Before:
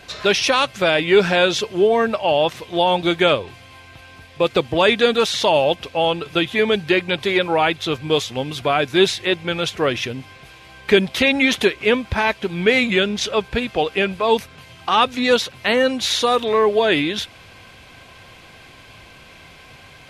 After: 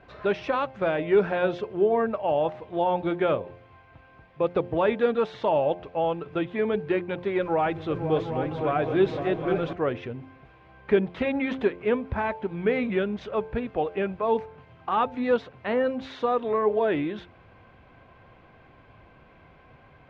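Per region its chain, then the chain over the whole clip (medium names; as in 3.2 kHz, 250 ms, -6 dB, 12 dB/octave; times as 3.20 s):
7.40–9.73 s: jump at every zero crossing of -30.5 dBFS + band-stop 900 Hz, Q 13 + delay with an opening low-pass 254 ms, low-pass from 200 Hz, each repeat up 2 oct, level -3 dB
whole clip: low-pass 1.3 kHz 12 dB/octave; de-hum 88.09 Hz, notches 10; trim -6 dB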